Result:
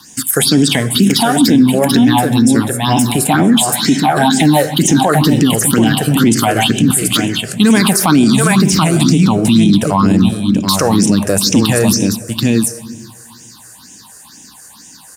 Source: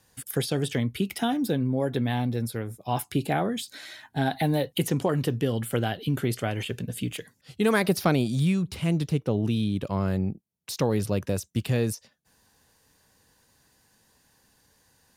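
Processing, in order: graphic EQ 125/250/500/1000/2000/4000/8000 Hz -9/+9/-12/+12/-6/+7/+12 dB; on a send: delay 732 ms -6.5 dB; on the sum: simulated room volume 1300 m³, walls mixed, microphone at 0.5 m; phase shifter stages 6, 2.1 Hz, lowest notch 240–1200 Hz; high-pass 96 Hz; peaking EQ 340 Hz +3.5 dB 1.4 oct; loudness maximiser +21 dB; trim -1 dB

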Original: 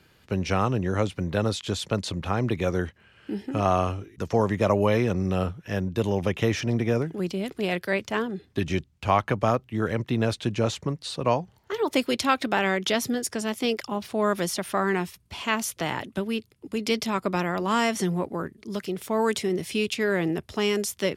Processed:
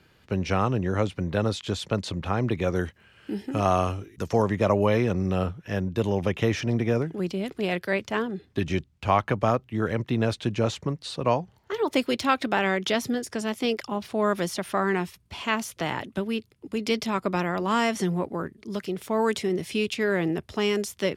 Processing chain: de-esser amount 50%; treble shelf 6.1 kHz -6.5 dB, from 2.76 s +5 dB, from 4.42 s -5 dB

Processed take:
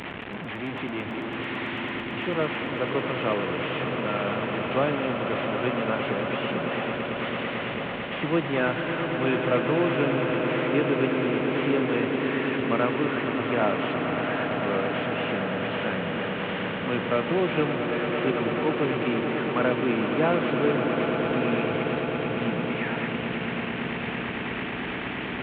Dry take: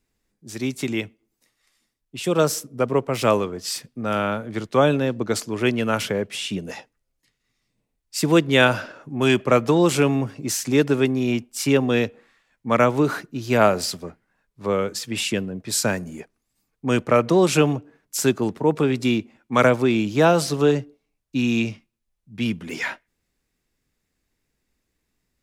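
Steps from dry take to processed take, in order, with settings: one-bit delta coder 16 kbps, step -19 dBFS; high-pass 130 Hz 12 dB/octave; on a send: echo with a slow build-up 111 ms, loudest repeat 8, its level -10.5 dB; on the sum: trim -8 dB

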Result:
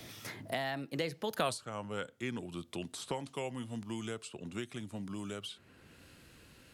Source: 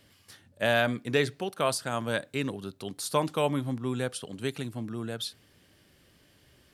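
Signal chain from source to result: Doppler pass-by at 1.48 s, 44 m/s, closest 3.1 m; three bands compressed up and down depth 100%; trim +9 dB

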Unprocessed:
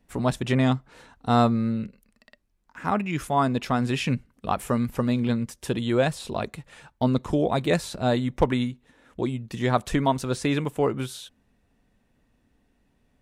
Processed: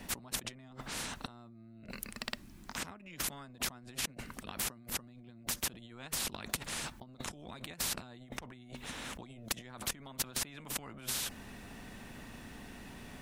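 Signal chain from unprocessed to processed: resonant low shelf 330 Hz +12 dB, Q 3; compressor with a negative ratio -32 dBFS, ratio -1; spectrum-flattening compressor 4:1; trim -6 dB

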